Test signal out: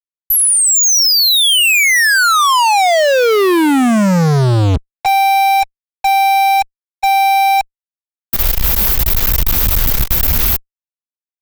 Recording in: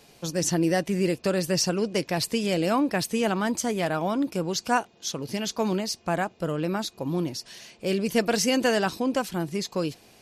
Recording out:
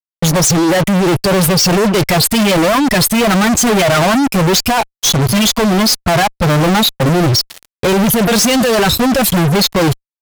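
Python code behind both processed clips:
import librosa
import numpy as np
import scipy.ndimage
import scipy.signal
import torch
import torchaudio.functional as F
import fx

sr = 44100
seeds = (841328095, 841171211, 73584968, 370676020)

y = fx.bin_expand(x, sr, power=2.0)
y = fx.over_compress(y, sr, threshold_db=-35.0, ratio=-1.0)
y = fx.fuzz(y, sr, gain_db=56.0, gate_db=-55.0)
y = y * 10.0 ** (3.0 / 20.0)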